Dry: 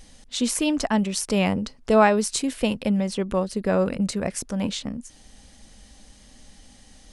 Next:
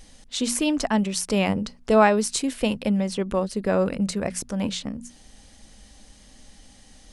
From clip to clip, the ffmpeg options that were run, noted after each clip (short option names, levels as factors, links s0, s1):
-af "bandreject=f=60:t=h:w=6,bandreject=f=120:t=h:w=6,bandreject=f=180:t=h:w=6,bandreject=f=240:t=h:w=6"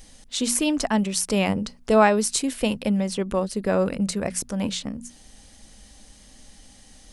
-af "highshelf=f=9100:g=7"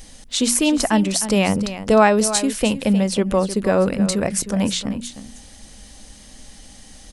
-filter_complex "[0:a]asplit=2[s0][s1];[s1]alimiter=limit=0.178:level=0:latency=1:release=274,volume=1.06[s2];[s0][s2]amix=inputs=2:normalize=0,aecho=1:1:308:0.237"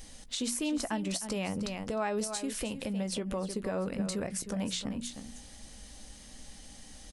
-filter_complex "[0:a]acompressor=threshold=0.126:ratio=6,alimiter=limit=0.158:level=0:latency=1:release=256,asplit=2[s0][s1];[s1]adelay=17,volume=0.237[s2];[s0][s2]amix=inputs=2:normalize=0,volume=0.447"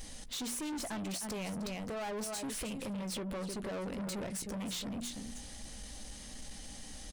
-af "asoftclip=type=tanh:threshold=0.01,volume=1.5"